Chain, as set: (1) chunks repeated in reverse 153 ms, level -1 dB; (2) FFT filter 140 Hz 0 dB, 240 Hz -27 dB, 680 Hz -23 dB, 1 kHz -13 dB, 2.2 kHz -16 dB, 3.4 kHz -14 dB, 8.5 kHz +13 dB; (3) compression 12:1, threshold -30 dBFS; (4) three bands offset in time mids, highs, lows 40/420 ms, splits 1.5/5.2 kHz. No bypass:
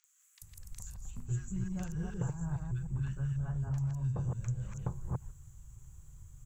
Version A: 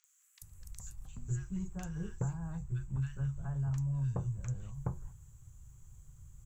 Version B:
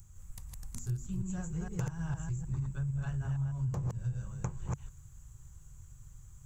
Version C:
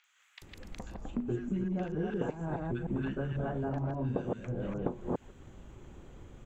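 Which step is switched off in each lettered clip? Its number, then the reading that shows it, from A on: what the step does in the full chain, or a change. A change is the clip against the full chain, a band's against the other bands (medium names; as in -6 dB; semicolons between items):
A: 1, momentary loudness spread change +3 LU; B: 4, echo-to-direct 0.5 dB to none; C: 2, 125 Hz band -12.0 dB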